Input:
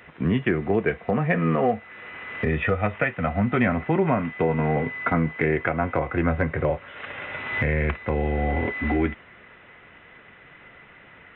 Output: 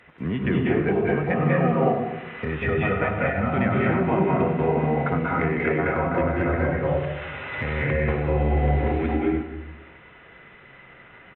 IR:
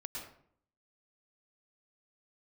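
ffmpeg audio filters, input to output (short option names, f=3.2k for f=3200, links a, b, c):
-filter_complex "[0:a]aecho=1:1:97:0.224[a];[1:a]atrim=start_sample=2205,asetrate=24255,aresample=44100[b];[a][b]afir=irnorm=-1:irlink=0,volume=-2.5dB"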